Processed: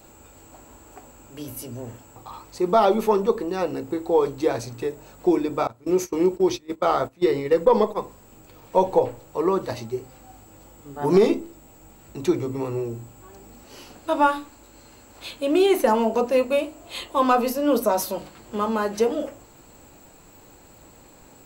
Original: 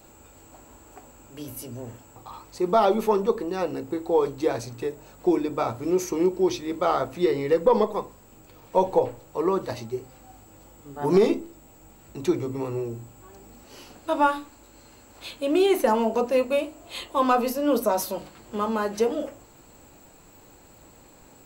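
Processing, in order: 5.67–8.02 s: gate -27 dBFS, range -19 dB; trim +2 dB

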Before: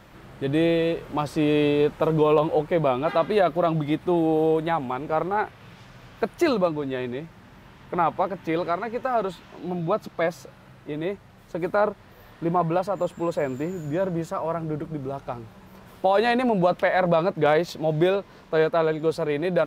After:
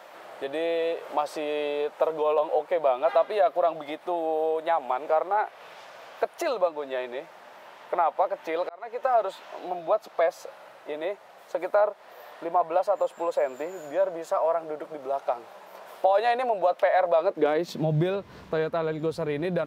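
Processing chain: compression 2.5:1, threshold -30 dBFS, peak gain reduction 10 dB; high-pass sweep 620 Hz -> 68 Hz, 17.15–18.28 s; 8.17–9.03 s: slow attack 434 ms; trim +2 dB

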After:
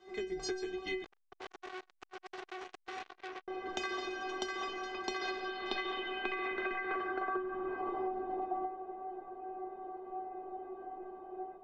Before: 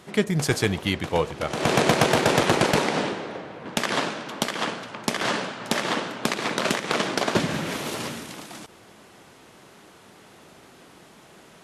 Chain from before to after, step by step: octave divider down 2 oct, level -3 dB; three-band isolator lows -20 dB, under 230 Hz, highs -14 dB, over 5.4 kHz; level rider gain up to 11 dB; tilt EQ -2.5 dB/octave; hum notches 50/100/150/200/250/300 Hz; inharmonic resonator 370 Hz, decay 0.34 s, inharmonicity 0.008; compression 16:1, threshold -41 dBFS, peak gain reduction 17.5 dB; low-pass sweep 6.4 kHz -> 770 Hz, 4.90–8.23 s; feedback echo behind a band-pass 139 ms, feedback 84%, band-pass 890 Hz, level -22 dB; 1.04–3.48 s: transformer saturation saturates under 3 kHz; trim +6 dB

